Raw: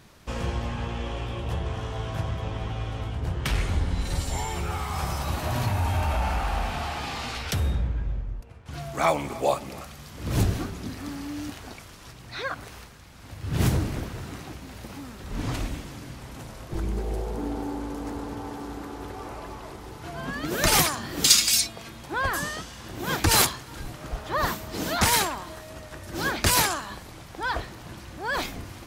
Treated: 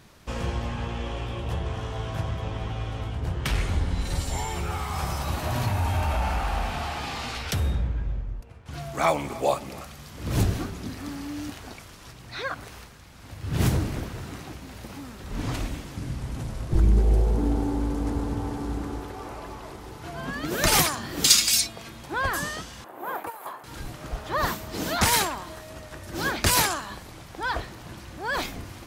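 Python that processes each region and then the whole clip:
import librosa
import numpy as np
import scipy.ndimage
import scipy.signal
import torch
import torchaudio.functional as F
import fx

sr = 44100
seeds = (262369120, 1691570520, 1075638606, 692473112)

y = fx.chain(x, sr, fx.cvsd(bps=64000),
    fx.low_shelf(hz=230.0, db=12.0), at=(15.97, 19.0))
y = fx.chain(y, sr, fx.highpass(hz=650.0, slope=12),
    fx.over_compress(threshold_db=-29.0, ratio=-1.0),
    fx.curve_eq(hz=(920.0, 5600.0, 14000.0), db=(0, -30, -7)), at=(22.84, 23.64))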